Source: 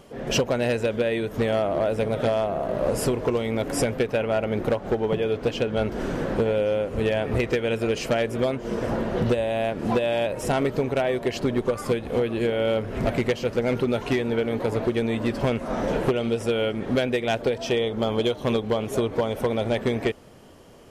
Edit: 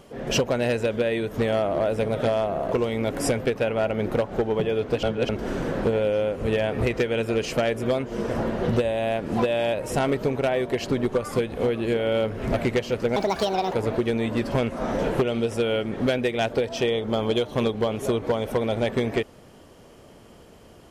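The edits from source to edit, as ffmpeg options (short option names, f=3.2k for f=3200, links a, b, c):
-filter_complex "[0:a]asplit=6[a][b][c][d][e][f];[a]atrim=end=2.722[g];[b]atrim=start=3.248:end=5.562[h];[c]atrim=start=5.558:end=5.822,asetpts=PTS-STARTPTS,areverse[i];[d]atrim=start=5.818:end=13.694[j];[e]atrim=start=13.69:end=14.62,asetpts=PTS-STARTPTS,asetrate=71883,aresample=44100,atrim=end_sample=25161,asetpts=PTS-STARTPTS[k];[f]atrim=start=14.616[l];[g][h]acrossfade=d=0.004:c1=hsin:c2=hsin[m];[m][i]acrossfade=d=0.004:c1=hsin:c2=hsin[n];[n][j]acrossfade=d=0.004:c1=hsin:c2=hsin[o];[o][k]acrossfade=d=0.004:c1=hsin:c2=hsin[p];[p][l]acrossfade=d=0.004:c1=hsin:c2=hsin"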